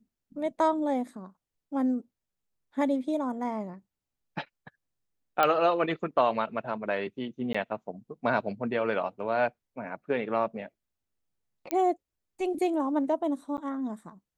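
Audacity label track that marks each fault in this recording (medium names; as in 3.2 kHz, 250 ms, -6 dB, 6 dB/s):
5.430000	5.430000	pop -11 dBFS
7.530000	7.540000	dropout 15 ms
11.710000	11.710000	pop -13 dBFS
13.570000	13.580000	dropout 9.4 ms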